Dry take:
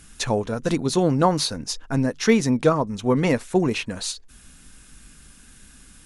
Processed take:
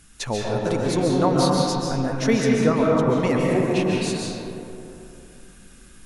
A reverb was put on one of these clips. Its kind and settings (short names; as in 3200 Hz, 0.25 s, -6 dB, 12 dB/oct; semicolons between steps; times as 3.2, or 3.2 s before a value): digital reverb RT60 2.9 s, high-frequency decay 0.4×, pre-delay 0.1 s, DRR -3 dB; gain -4 dB